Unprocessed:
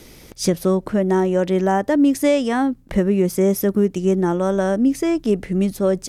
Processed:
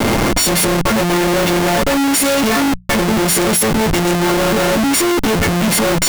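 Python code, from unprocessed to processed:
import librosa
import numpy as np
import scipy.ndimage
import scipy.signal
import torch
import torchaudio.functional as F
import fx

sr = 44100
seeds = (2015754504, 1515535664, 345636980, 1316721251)

p1 = fx.freq_snap(x, sr, grid_st=4)
p2 = scipy.signal.sosfilt(scipy.signal.butter(2, 93.0, 'highpass', fs=sr, output='sos'), p1)
p3 = fx.level_steps(p2, sr, step_db=15)
p4 = p2 + F.gain(torch.from_numpy(p3), 3.0).numpy()
p5 = p4 + 10.0 ** (-32.0 / 20.0) * np.sin(2.0 * np.pi * 2100.0 * np.arange(len(p4)) / sr)
p6 = fx.schmitt(p5, sr, flips_db=-25.0)
y = fx.hum_notches(p6, sr, base_hz=60, count=3)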